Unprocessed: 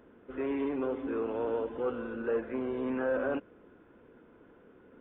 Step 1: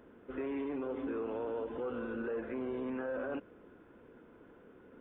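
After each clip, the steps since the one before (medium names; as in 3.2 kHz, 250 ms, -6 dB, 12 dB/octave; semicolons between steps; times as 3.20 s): peak limiter -30 dBFS, peak gain reduction 9 dB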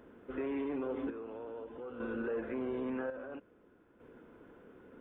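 square tremolo 0.5 Hz, depth 60%, duty 55%; trim +1 dB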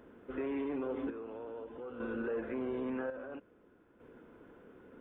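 no audible change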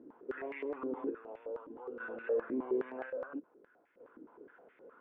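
step-sequenced band-pass 9.6 Hz 300–2100 Hz; trim +8.5 dB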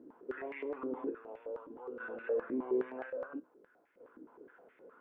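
feedback comb 63 Hz, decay 0.25 s, harmonics all, mix 40%; trim +2 dB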